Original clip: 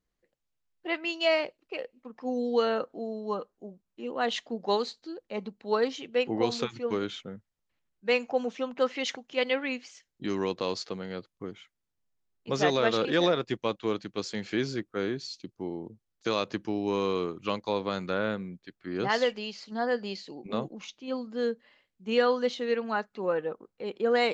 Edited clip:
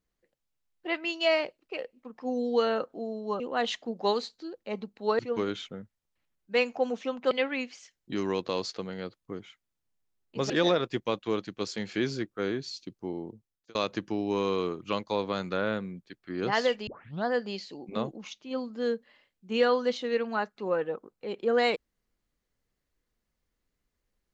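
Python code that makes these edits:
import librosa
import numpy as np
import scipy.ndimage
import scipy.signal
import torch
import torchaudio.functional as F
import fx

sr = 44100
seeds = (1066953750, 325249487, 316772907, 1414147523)

y = fx.edit(x, sr, fx.cut(start_s=3.4, length_s=0.64),
    fx.cut(start_s=5.83, length_s=0.9),
    fx.cut(start_s=8.85, length_s=0.58),
    fx.cut(start_s=12.62, length_s=0.45),
    fx.fade_out_span(start_s=15.84, length_s=0.48),
    fx.tape_start(start_s=19.44, length_s=0.38), tone=tone)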